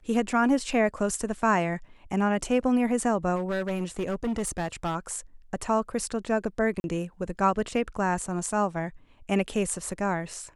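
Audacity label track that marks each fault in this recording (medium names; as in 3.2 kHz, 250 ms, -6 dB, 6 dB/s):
3.350000	4.960000	clipped -24.5 dBFS
6.800000	6.840000	dropout 41 ms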